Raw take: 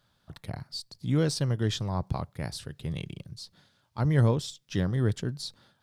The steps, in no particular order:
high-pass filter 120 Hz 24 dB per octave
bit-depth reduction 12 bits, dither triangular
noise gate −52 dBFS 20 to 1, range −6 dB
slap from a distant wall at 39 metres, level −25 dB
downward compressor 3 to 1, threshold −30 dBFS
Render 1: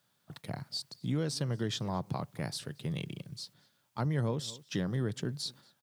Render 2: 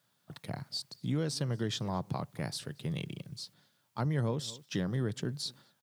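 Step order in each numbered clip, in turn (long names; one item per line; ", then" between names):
high-pass filter, then bit-depth reduction, then noise gate, then slap from a distant wall, then downward compressor
bit-depth reduction, then slap from a distant wall, then noise gate, then high-pass filter, then downward compressor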